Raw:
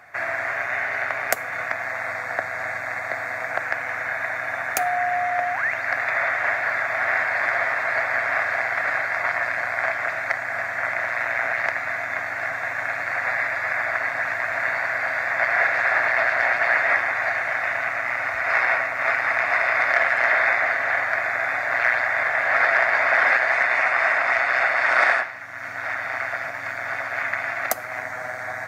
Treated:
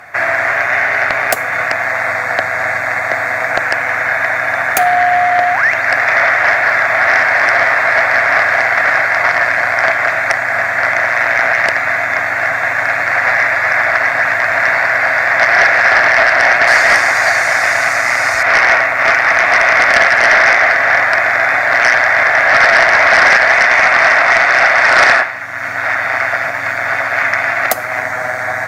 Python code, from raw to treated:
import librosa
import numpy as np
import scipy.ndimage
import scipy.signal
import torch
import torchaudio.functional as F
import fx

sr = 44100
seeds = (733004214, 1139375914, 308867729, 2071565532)

y = fx.band_shelf(x, sr, hz=7300.0, db=15.0, octaves=1.7, at=(16.67, 18.43))
y = fx.fold_sine(y, sr, drive_db=7, ceiling_db=-4.5)
y = y * 10.0 ** (1.5 / 20.0)